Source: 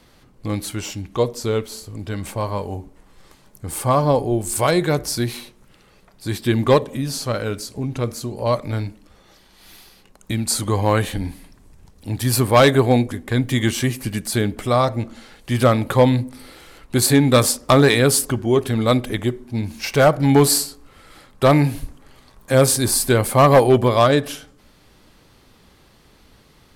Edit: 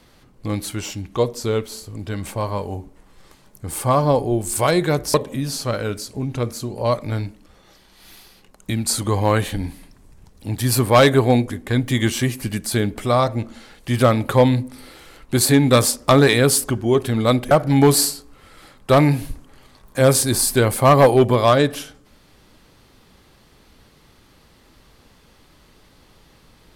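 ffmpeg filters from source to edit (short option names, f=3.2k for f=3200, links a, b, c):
-filter_complex "[0:a]asplit=3[a][b][c];[a]atrim=end=5.142[d];[b]atrim=start=6.748:end=19.122[e];[c]atrim=start=20.038[f];[d][e]acrossfade=d=0.004:c1=hsin:c2=hsin[g];[g][f]acrossfade=d=0.004:c1=hsin:c2=hsin"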